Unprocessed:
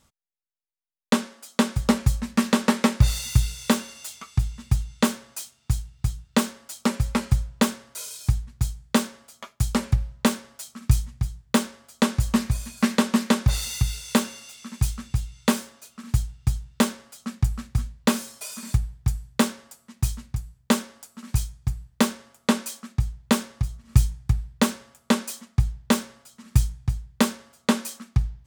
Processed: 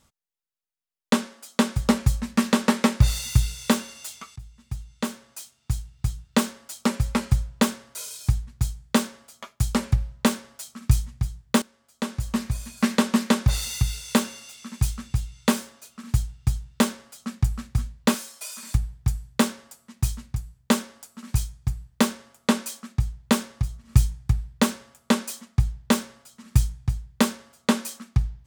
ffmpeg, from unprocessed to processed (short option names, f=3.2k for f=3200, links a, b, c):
-filter_complex "[0:a]asettb=1/sr,asplit=3[a][b][c];[a]atrim=end=18.144[d];[b]atrim=start=18.14:end=18.75,asetpts=PTS-STARTPTS,afade=t=in:d=0.004:c=qsin,afade=t=out:st=0.606:d=0.004:c=qsin,highpass=f=720:p=1[e];[c]atrim=start=18.746[f];[d][e]acrossfade=d=0.004:c1=hsin:c2=qsin[g];[g][f]acrossfade=d=0.004:c1=qsin:c2=hsin,asplit=3[h][i][j];[h]atrim=end=4.36,asetpts=PTS-STARTPTS,afade=t=out:st=4.356:d=0.004:c=hsin:silence=0.105925[k];[i]atrim=start=4.36:end=11.62,asetpts=PTS-STARTPTS,afade=t=in:d=1.86:silence=0.105925,afade=t=out:st=7.256:d=0.004:c=hsin:silence=0.11885[l];[j]atrim=start=11.62,asetpts=PTS-STARTPTS,afade=t=in:d=1.32:silence=0.11885[m];[k][l][m]concat=n=3:v=0:a=1"